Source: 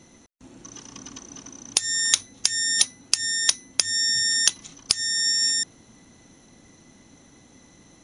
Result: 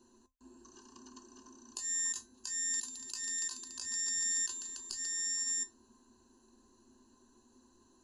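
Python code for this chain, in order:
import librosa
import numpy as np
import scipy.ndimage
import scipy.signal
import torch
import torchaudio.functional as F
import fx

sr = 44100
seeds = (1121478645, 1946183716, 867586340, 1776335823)

y = fx.peak_eq(x, sr, hz=530.0, db=4.0, octaves=2.0)
y = fx.fixed_phaser(y, sr, hz=590.0, stages=6)
y = fx.comb_fb(y, sr, f0_hz=260.0, decay_s=0.17, harmonics='all', damping=0.0, mix_pct=70)
y = fx.echo_heads(y, sr, ms=143, heads='first and second', feedback_pct=60, wet_db=-17.0, at=(2.72, 5.12), fade=0.02)
y = fx.over_compress(y, sr, threshold_db=-30.0, ratio=-0.5)
y = fx.ripple_eq(y, sr, per_octave=1.4, db=14)
y = y * 10.0 ** (-6.5 / 20.0)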